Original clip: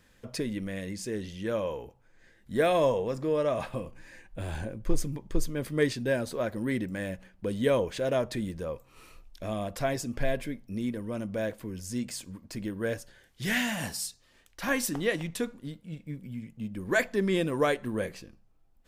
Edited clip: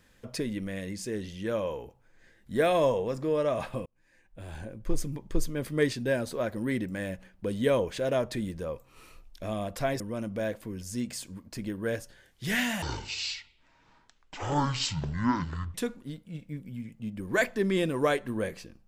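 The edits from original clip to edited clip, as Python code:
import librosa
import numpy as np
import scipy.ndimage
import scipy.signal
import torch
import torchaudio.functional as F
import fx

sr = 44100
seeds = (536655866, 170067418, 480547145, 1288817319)

y = fx.edit(x, sr, fx.fade_in_span(start_s=3.86, length_s=1.36),
    fx.cut(start_s=10.0, length_s=0.98),
    fx.speed_span(start_s=13.8, length_s=1.52, speed=0.52), tone=tone)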